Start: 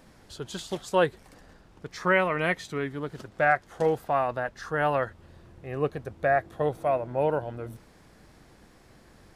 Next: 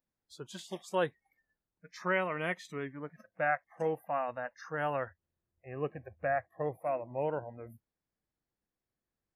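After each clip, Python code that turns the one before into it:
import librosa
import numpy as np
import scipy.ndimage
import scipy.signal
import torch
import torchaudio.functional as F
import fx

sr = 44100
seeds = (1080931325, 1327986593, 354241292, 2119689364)

y = fx.noise_reduce_blind(x, sr, reduce_db=29)
y = y * librosa.db_to_amplitude(-8.0)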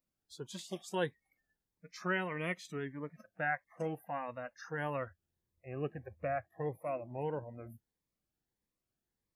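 y = fx.dynamic_eq(x, sr, hz=720.0, q=0.82, threshold_db=-42.0, ratio=4.0, max_db=-4)
y = fx.notch_cascade(y, sr, direction='rising', hz=1.6)
y = y * librosa.db_to_amplitude(1.0)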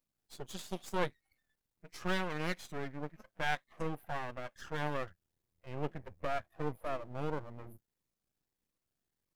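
y = np.maximum(x, 0.0)
y = y * librosa.db_to_amplitude(4.5)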